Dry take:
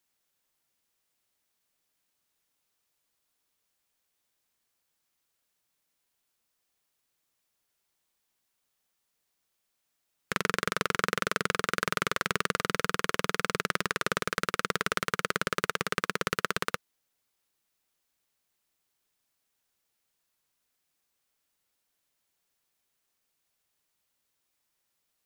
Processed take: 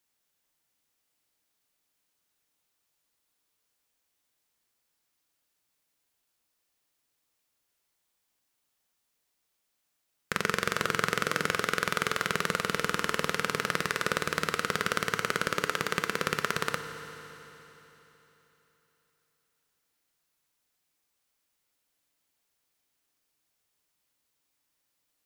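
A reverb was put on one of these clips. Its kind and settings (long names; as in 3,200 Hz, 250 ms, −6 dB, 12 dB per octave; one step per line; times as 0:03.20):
feedback delay network reverb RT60 3.6 s, high-frequency decay 1×, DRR 7.5 dB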